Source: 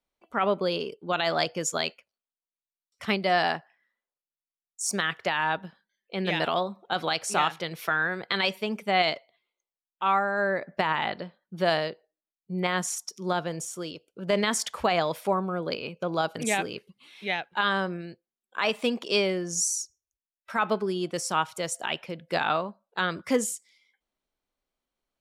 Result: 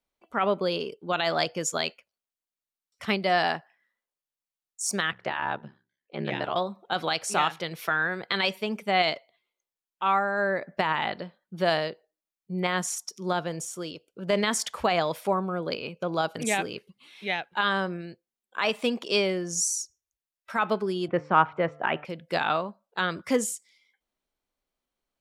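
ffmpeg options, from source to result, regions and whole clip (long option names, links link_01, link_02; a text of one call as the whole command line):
ffmpeg -i in.wav -filter_complex "[0:a]asettb=1/sr,asplit=3[link_01][link_02][link_03];[link_01]atrim=end=5.114[link_04];[link_02]atrim=start=5.11:end=6.56,asetpts=PTS-STARTPTS,afade=type=in:duration=0.004:curve=qsin,afade=type=out:start_time=1.446:duration=0.004:curve=qsin,aemphasis=mode=reproduction:type=75fm,bandreject=frequency=50:width_type=h:width=6,bandreject=frequency=100:width_type=h:width=6,bandreject=frequency=150:width_type=h:width=6,bandreject=frequency=200:width_type=h:width=6,bandreject=frequency=250:width_type=h:width=6,bandreject=frequency=300:width_type=h:width=6,bandreject=frequency=350:width_type=h:width=6,bandreject=frequency=400:width_type=h:width=6,bandreject=frequency=450:width_type=h:width=6,aeval=exprs='val(0)*sin(2*PI*34*n/s)':channel_layout=same[link_05];[link_03]atrim=start=6.556[link_06];[link_04][link_05]acrossfade=duration=0.004:curve1=hsin:curve2=qsin[link_07];[link_07][link_06]acrossfade=duration=0.004:curve1=qsin:curve2=hsin,asettb=1/sr,asplit=3[link_08][link_09][link_10];[link_08]atrim=end=21.084[link_11];[link_09]atrim=start=21.08:end=22.05,asetpts=PTS-STARTPTS,afade=type=in:duration=0.004:curve=qsin,afade=type=out:start_time=0.966:duration=0.004:curve=qsin,lowpass=frequency=2100:width=0.5412,lowpass=frequency=2100:width=1.3066,bandreject=frequency=149:width_type=h:width=4,bandreject=frequency=298:width_type=h:width=4,bandreject=frequency=447:width_type=h:width=4,bandreject=frequency=596:width_type=h:width=4,bandreject=frequency=745:width_type=h:width=4,bandreject=frequency=894:width_type=h:width=4,bandreject=frequency=1043:width_type=h:width=4,bandreject=frequency=1192:width_type=h:width=4,bandreject=frequency=1341:width_type=h:width=4,acontrast=61[link_12];[link_10]atrim=start=22.046[link_13];[link_11][link_12]acrossfade=duration=0.004:curve1=hsin:curve2=qsin[link_14];[link_14][link_13]acrossfade=duration=0.004:curve1=qsin:curve2=hsin" out.wav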